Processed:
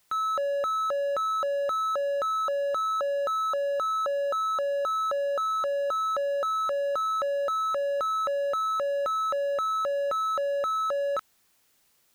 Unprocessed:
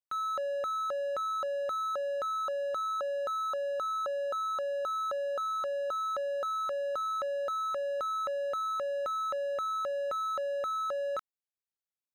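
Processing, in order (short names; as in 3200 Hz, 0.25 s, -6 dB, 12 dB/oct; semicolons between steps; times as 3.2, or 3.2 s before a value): requantised 12-bit, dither triangular; gain +5.5 dB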